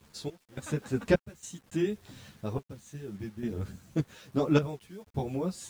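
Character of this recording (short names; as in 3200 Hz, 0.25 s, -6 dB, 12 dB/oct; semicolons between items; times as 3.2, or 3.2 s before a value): random-step tremolo 3.5 Hz, depth 95%; a quantiser's noise floor 10-bit, dither none; a shimmering, thickened sound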